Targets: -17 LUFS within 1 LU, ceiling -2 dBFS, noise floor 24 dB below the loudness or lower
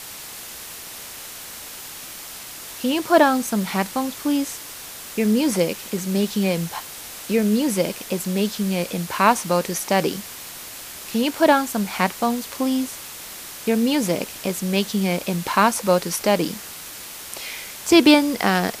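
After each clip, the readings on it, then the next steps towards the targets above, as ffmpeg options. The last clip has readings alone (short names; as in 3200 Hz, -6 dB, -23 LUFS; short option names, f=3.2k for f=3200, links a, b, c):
noise floor -37 dBFS; noise floor target -45 dBFS; loudness -21.0 LUFS; peak -2.0 dBFS; loudness target -17.0 LUFS
-> -af "afftdn=nr=8:nf=-37"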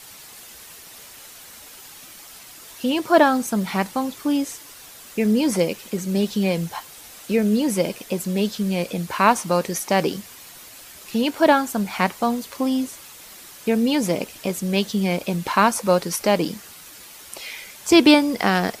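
noise floor -43 dBFS; noise floor target -45 dBFS
-> -af "afftdn=nr=6:nf=-43"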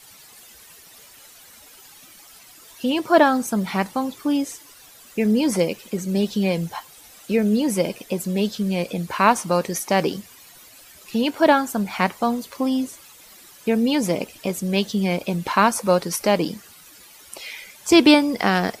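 noise floor -47 dBFS; loudness -21.5 LUFS; peak -2.0 dBFS; loudness target -17.0 LUFS
-> -af "volume=4.5dB,alimiter=limit=-2dB:level=0:latency=1"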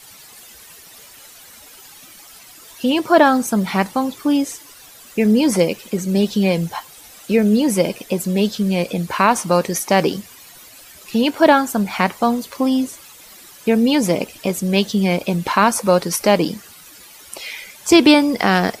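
loudness -17.5 LUFS; peak -2.0 dBFS; noise floor -43 dBFS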